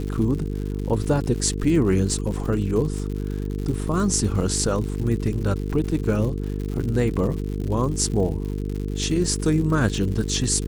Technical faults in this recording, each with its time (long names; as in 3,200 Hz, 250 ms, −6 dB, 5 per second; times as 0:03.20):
mains buzz 50 Hz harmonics 9 −27 dBFS
surface crackle 140 per second −30 dBFS